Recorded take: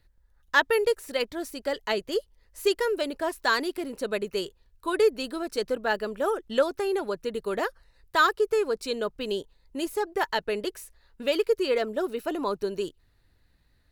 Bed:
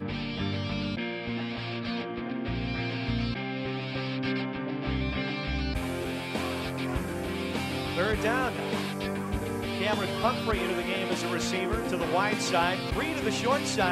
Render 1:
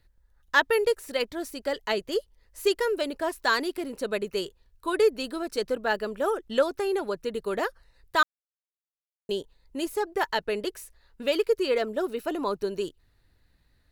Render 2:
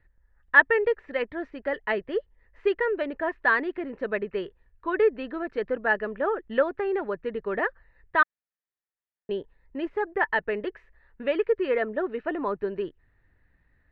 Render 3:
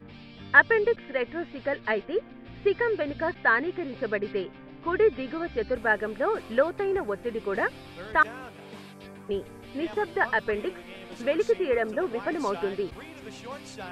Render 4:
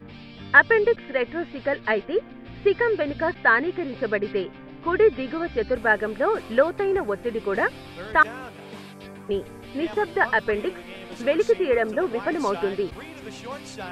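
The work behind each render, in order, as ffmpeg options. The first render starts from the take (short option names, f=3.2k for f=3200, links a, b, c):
-filter_complex "[0:a]asplit=3[a][b][c];[a]atrim=end=8.23,asetpts=PTS-STARTPTS,afade=t=out:st=8.226:d=0.004:c=hsin[d];[b]atrim=start=8.23:end=9.29,asetpts=PTS-STARTPTS,volume=0[e];[c]atrim=start=9.29,asetpts=PTS-STARTPTS,afade=t=in:d=0.004:c=hsin[f];[d][e][f]concat=n=3:v=0:a=1"
-af "lowpass=f=2.4k:w=0.5412,lowpass=f=2.4k:w=1.3066,equalizer=f=1.8k:t=o:w=0.24:g=9"
-filter_complex "[1:a]volume=-13.5dB[a];[0:a][a]amix=inputs=2:normalize=0"
-af "volume=4dB,alimiter=limit=-2dB:level=0:latency=1"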